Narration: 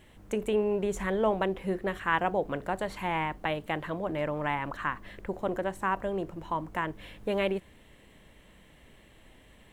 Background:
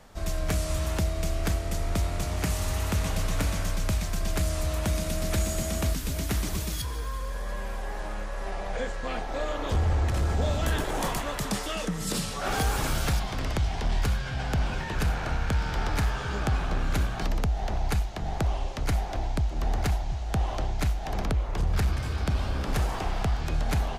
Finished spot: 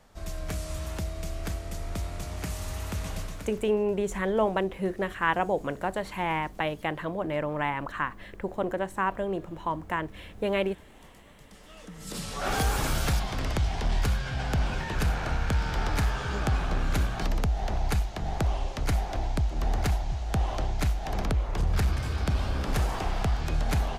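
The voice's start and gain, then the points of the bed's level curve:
3.15 s, +1.5 dB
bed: 3.19 s -6 dB
3.82 s -26.5 dB
11.45 s -26.5 dB
12.41 s 0 dB

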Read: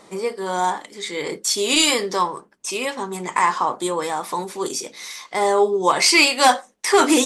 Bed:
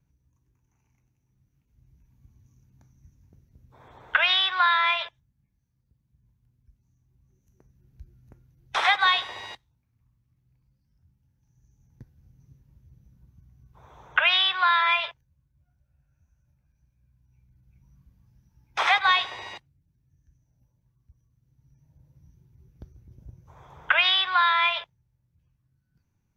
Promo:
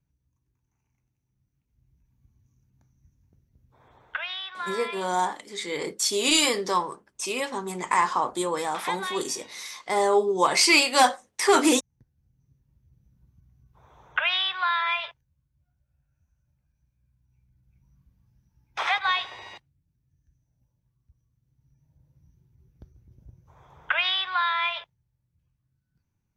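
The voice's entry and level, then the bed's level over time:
4.55 s, -4.0 dB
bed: 3.94 s -6 dB
4.28 s -12.5 dB
11.99 s -12.5 dB
13.30 s -4 dB

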